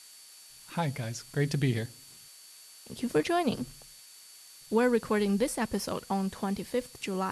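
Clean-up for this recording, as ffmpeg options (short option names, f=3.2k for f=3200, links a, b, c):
-af "bandreject=f=4.5k:w=30,afftdn=nr=23:nf=-52"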